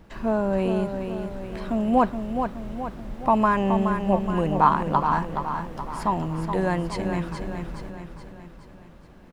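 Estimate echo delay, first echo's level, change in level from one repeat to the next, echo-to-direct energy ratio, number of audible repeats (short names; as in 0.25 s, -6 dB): 0.422 s, -7.0 dB, -6.0 dB, -5.5 dB, 5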